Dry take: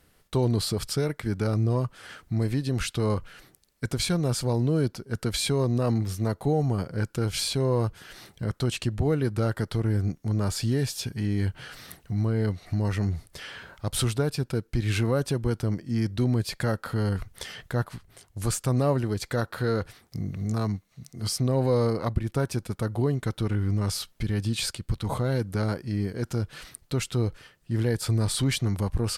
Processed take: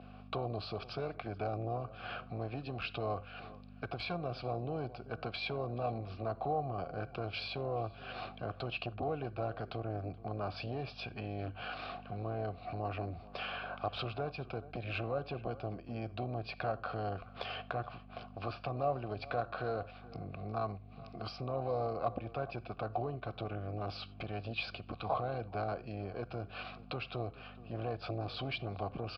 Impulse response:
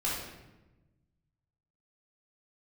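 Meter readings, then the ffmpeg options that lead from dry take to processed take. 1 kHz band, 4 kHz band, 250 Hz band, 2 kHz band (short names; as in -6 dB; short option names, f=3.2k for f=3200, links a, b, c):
-1.5 dB, -11.5 dB, -15.5 dB, -6.0 dB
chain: -filter_complex "[0:a]adynamicequalizer=threshold=0.00398:dfrequency=1100:dqfactor=1.5:tfrequency=1100:tqfactor=1.5:attack=5:release=100:ratio=0.375:range=3:mode=cutabove:tftype=bell,aeval=exprs='val(0)+0.0112*(sin(2*PI*50*n/s)+sin(2*PI*2*50*n/s)/2+sin(2*PI*3*50*n/s)/3+sin(2*PI*4*50*n/s)/4+sin(2*PI*5*50*n/s)/5)':c=same,asplit=2[a][b];[1:a]atrim=start_sample=2205,afade=t=out:st=0.15:d=0.01,atrim=end_sample=7056,asetrate=43218,aresample=44100[c];[b][c]afir=irnorm=-1:irlink=0,volume=-23.5dB[d];[a][d]amix=inputs=2:normalize=0,aresample=11025,aresample=44100,acrossover=split=120[e][f];[f]acompressor=threshold=-44dB:ratio=2.5[g];[e][g]amix=inputs=2:normalize=0,equalizer=f=1.5k:w=8:g=5,asplit=2[h][i];[i]adelay=425.7,volume=-20dB,highshelf=f=4k:g=-9.58[j];[h][j]amix=inputs=2:normalize=0,aeval=exprs='0.178*sin(PI/2*2.51*val(0)/0.178)':c=same,asplit=3[k][l][m];[k]bandpass=f=730:t=q:w=8,volume=0dB[n];[l]bandpass=f=1.09k:t=q:w=8,volume=-6dB[o];[m]bandpass=f=2.44k:t=q:w=8,volume=-9dB[p];[n][o][p]amix=inputs=3:normalize=0,volume=8dB"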